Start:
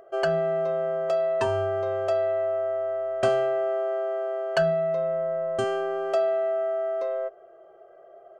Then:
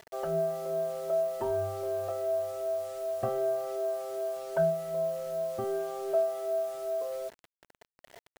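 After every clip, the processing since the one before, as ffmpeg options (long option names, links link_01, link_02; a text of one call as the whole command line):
ffmpeg -i in.wav -af "afftfilt=real='re*pow(10,12/40*sin(2*PI*(1.6*log(max(b,1)*sr/1024/100)/log(2)-(2.6)*(pts-256)/sr)))':imag='im*pow(10,12/40*sin(2*PI*(1.6*log(max(b,1)*sr/1024/100)/log(2)-(2.6)*(pts-256)/sr)))':win_size=1024:overlap=0.75,lowpass=1000,acrusher=bits=6:mix=0:aa=0.000001,volume=-7dB" out.wav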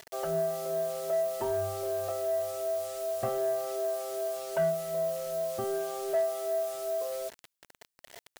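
ffmpeg -i in.wav -af "highshelf=frequency=2400:gain=9,areverse,acompressor=mode=upward:threshold=-48dB:ratio=2.5,areverse,asoftclip=type=tanh:threshold=-20dB" out.wav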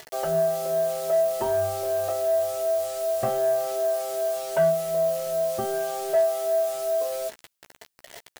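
ffmpeg -i in.wav -filter_complex "[0:a]asplit=2[link_01][link_02];[link_02]adelay=14,volume=-8dB[link_03];[link_01][link_03]amix=inputs=2:normalize=0,volume=5.5dB" out.wav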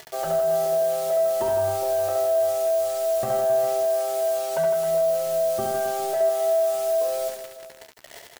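ffmpeg -i in.wav -af "alimiter=limit=-19dB:level=0:latency=1,aecho=1:1:70|157.5|266.9|403.6|574.5:0.631|0.398|0.251|0.158|0.1" out.wav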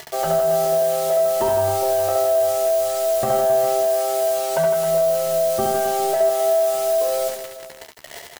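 ffmpeg -i in.wav -filter_complex "[0:a]asplit=2[link_01][link_02];[link_02]adelay=13,volume=-11dB[link_03];[link_01][link_03]amix=inputs=2:normalize=0,volume=6dB" out.wav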